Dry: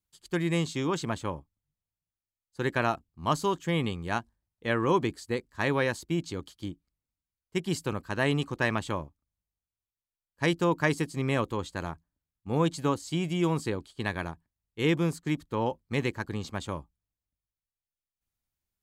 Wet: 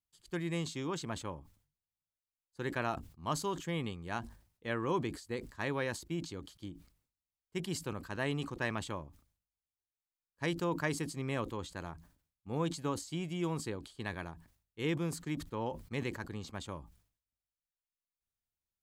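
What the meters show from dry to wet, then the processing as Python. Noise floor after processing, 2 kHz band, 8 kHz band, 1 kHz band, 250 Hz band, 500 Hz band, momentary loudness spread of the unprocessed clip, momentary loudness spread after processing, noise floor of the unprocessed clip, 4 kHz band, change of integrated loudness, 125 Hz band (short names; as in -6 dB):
under -85 dBFS, -8.0 dB, -3.0 dB, -8.0 dB, -8.0 dB, -8.5 dB, 12 LU, 12 LU, under -85 dBFS, -7.0 dB, -8.0 dB, -8.0 dB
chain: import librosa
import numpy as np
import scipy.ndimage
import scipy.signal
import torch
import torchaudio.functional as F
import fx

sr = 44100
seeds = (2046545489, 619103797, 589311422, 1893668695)

y = fx.sustainer(x, sr, db_per_s=120.0)
y = y * librosa.db_to_amplitude(-8.5)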